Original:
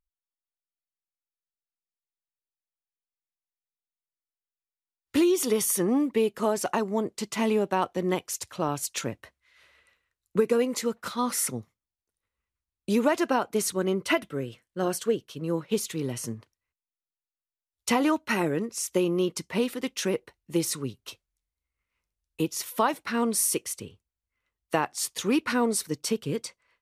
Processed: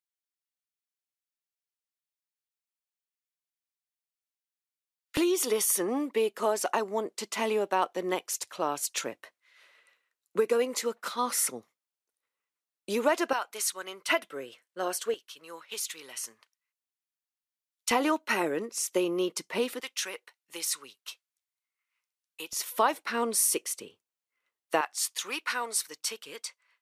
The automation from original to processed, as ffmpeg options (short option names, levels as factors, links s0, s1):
-af "asetnsamples=n=441:p=0,asendcmd='5.17 highpass f 400;13.33 highpass f 1100;14.09 highpass f 540;15.14 highpass f 1200;17.91 highpass f 360;19.8 highpass f 1100;22.53 highpass f 370;24.81 highpass f 1000',highpass=1400"